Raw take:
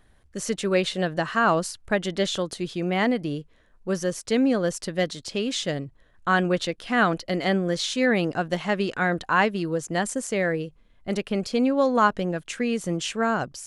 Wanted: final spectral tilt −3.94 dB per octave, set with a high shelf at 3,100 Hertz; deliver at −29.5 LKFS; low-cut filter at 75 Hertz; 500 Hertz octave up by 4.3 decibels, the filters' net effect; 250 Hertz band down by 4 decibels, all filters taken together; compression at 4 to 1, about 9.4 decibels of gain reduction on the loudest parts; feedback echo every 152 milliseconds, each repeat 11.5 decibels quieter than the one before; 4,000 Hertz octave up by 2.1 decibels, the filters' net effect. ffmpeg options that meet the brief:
ffmpeg -i in.wav -af "highpass=75,equalizer=frequency=250:width_type=o:gain=-7.5,equalizer=frequency=500:width_type=o:gain=7,highshelf=frequency=3100:gain=-4,equalizer=frequency=4000:width_type=o:gain=5.5,acompressor=threshold=-24dB:ratio=4,aecho=1:1:152|304|456:0.266|0.0718|0.0194,volume=-1dB" out.wav

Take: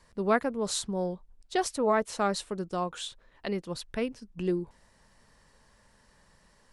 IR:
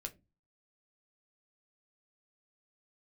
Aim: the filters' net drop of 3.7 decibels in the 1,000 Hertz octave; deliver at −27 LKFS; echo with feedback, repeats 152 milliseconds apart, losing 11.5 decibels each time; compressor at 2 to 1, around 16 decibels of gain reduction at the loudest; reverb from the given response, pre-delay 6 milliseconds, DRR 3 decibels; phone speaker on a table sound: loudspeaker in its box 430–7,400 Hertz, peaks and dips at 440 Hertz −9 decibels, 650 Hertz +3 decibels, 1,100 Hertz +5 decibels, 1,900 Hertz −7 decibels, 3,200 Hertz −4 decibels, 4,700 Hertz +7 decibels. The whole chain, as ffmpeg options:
-filter_complex "[0:a]equalizer=frequency=1000:width_type=o:gain=-8,acompressor=threshold=-54dB:ratio=2,aecho=1:1:152|304|456:0.266|0.0718|0.0194,asplit=2[link_01][link_02];[1:a]atrim=start_sample=2205,adelay=6[link_03];[link_02][link_03]afir=irnorm=-1:irlink=0,volume=0dB[link_04];[link_01][link_04]amix=inputs=2:normalize=0,highpass=frequency=430:width=0.5412,highpass=frequency=430:width=1.3066,equalizer=frequency=440:width_type=q:width=4:gain=-9,equalizer=frequency=650:width_type=q:width=4:gain=3,equalizer=frequency=1100:width_type=q:width=4:gain=5,equalizer=frequency=1900:width_type=q:width=4:gain=-7,equalizer=frequency=3200:width_type=q:width=4:gain=-4,equalizer=frequency=4700:width_type=q:width=4:gain=7,lowpass=frequency=7400:width=0.5412,lowpass=frequency=7400:width=1.3066,volume=20.5dB"

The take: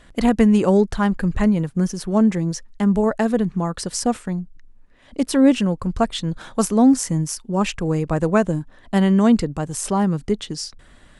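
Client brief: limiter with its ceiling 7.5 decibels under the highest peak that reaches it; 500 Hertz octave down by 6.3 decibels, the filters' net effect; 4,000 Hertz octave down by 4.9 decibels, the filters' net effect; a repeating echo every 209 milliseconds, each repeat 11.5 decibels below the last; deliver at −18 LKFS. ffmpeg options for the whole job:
ffmpeg -i in.wav -af "equalizer=frequency=500:width_type=o:gain=-8,equalizer=frequency=4000:width_type=o:gain=-7,alimiter=limit=-13.5dB:level=0:latency=1,aecho=1:1:209|418|627:0.266|0.0718|0.0194,volume=5.5dB" out.wav

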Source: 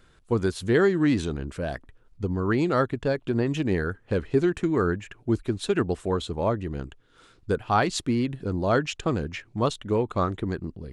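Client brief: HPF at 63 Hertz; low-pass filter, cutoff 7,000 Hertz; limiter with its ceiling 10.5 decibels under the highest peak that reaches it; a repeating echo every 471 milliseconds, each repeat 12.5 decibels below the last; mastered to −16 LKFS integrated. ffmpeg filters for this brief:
ffmpeg -i in.wav -af "highpass=63,lowpass=7000,alimiter=limit=-18.5dB:level=0:latency=1,aecho=1:1:471|942|1413:0.237|0.0569|0.0137,volume=13.5dB" out.wav

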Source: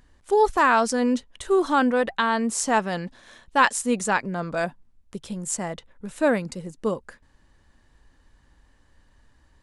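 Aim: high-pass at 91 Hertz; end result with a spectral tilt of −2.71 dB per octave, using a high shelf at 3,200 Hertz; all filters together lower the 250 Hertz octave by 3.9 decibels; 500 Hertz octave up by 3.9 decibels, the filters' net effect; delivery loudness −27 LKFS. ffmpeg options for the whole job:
ffmpeg -i in.wav -af "highpass=91,equalizer=frequency=250:width_type=o:gain=-6.5,equalizer=frequency=500:width_type=o:gain=6.5,highshelf=frequency=3200:gain=4,volume=-5.5dB" out.wav

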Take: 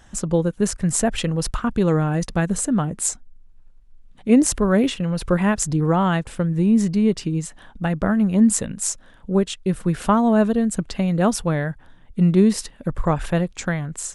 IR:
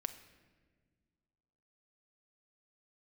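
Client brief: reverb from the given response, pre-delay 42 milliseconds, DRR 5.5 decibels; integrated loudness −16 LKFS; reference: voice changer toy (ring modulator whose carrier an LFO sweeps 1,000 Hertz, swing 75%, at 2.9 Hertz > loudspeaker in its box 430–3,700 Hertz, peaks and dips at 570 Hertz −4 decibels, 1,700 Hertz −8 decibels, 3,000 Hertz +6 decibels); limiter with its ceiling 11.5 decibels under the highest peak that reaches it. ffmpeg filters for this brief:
-filter_complex "[0:a]alimiter=limit=-15dB:level=0:latency=1,asplit=2[link_01][link_02];[1:a]atrim=start_sample=2205,adelay=42[link_03];[link_02][link_03]afir=irnorm=-1:irlink=0,volume=-4.5dB[link_04];[link_01][link_04]amix=inputs=2:normalize=0,aeval=exprs='val(0)*sin(2*PI*1000*n/s+1000*0.75/2.9*sin(2*PI*2.9*n/s))':channel_layout=same,highpass=430,equalizer=frequency=570:width_type=q:width=4:gain=-4,equalizer=frequency=1700:width_type=q:width=4:gain=-8,equalizer=frequency=3000:width_type=q:width=4:gain=6,lowpass=frequency=3700:width=0.5412,lowpass=frequency=3700:width=1.3066,volume=12dB"

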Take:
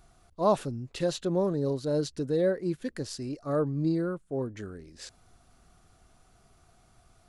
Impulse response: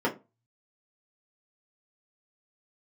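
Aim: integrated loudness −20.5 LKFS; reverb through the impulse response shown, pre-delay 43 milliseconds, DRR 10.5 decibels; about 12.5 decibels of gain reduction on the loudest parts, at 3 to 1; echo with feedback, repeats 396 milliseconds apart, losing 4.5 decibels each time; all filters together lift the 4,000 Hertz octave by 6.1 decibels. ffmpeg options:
-filter_complex "[0:a]equalizer=frequency=4000:width_type=o:gain=7,acompressor=threshold=-37dB:ratio=3,aecho=1:1:396|792|1188|1584|1980|2376|2772|3168|3564:0.596|0.357|0.214|0.129|0.0772|0.0463|0.0278|0.0167|0.01,asplit=2[link_01][link_02];[1:a]atrim=start_sample=2205,adelay=43[link_03];[link_02][link_03]afir=irnorm=-1:irlink=0,volume=-22.5dB[link_04];[link_01][link_04]amix=inputs=2:normalize=0,volume=16.5dB"

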